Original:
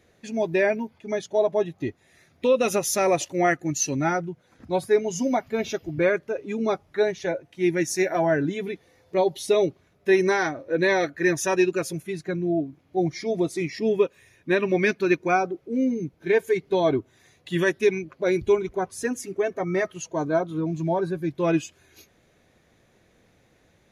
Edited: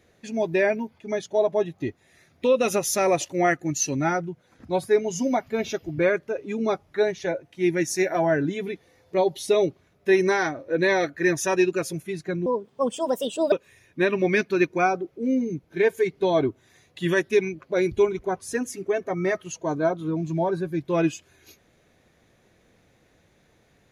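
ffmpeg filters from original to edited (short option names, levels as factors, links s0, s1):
-filter_complex "[0:a]asplit=3[s0][s1][s2];[s0]atrim=end=12.464[s3];[s1]atrim=start=12.46:end=14.02,asetpts=PTS-STARTPTS,asetrate=64827,aresample=44100[s4];[s2]atrim=start=14.016[s5];[s3][s4]acrossfade=d=0.004:c1=hsin:c2=hsin[s6];[s6][s5]acrossfade=d=0.004:c1=hsin:c2=hsin"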